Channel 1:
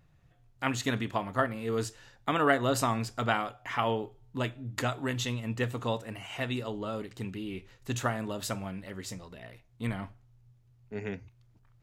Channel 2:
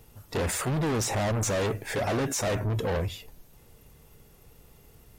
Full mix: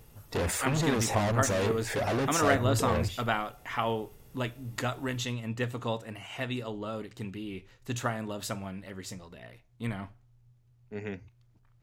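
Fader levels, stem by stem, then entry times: −1.0, −1.5 decibels; 0.00, 0.00 seconds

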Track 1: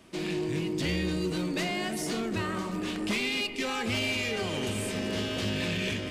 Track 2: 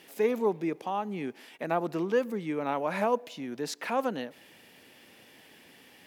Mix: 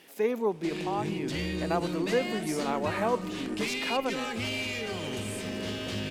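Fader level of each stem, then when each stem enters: −3.0, −1.0 decibels; 0.50, 0.00 seconds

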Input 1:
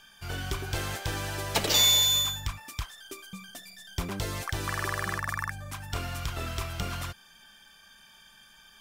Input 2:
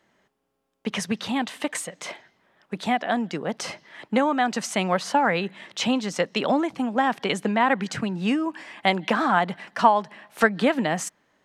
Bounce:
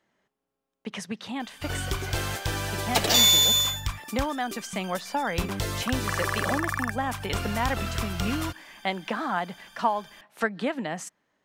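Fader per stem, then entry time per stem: +3.0, −7.5 decibels; 1.40, 0.00 seconds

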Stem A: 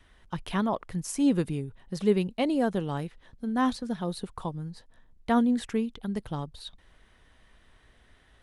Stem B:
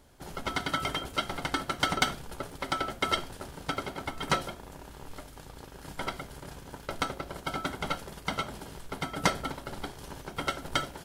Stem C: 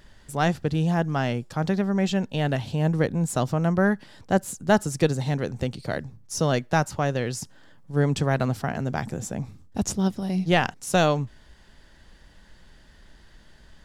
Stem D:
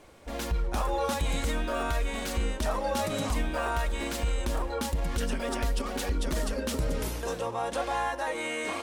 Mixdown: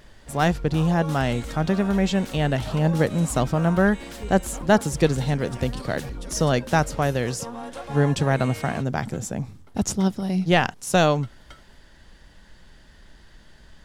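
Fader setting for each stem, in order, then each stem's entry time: −16.5, −19.0, +2.0, −6.0 decibels; 2.15, 0.75, 0.00, 0.00 seconds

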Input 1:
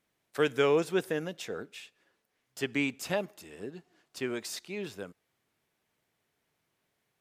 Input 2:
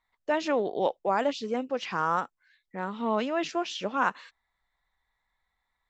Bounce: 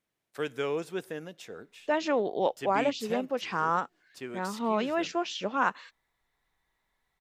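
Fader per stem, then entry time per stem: −6.0, −0.5 decibels; 0.00, 1.60 seconds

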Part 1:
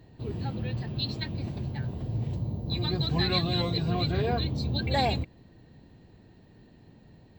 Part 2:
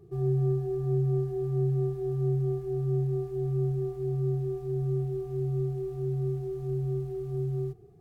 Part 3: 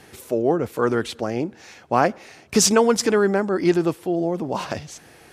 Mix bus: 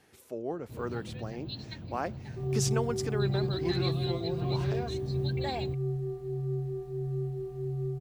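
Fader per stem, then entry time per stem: −9.0, −4.0, −15.5 decibels; 0.50, 2.25, 0.00 seconds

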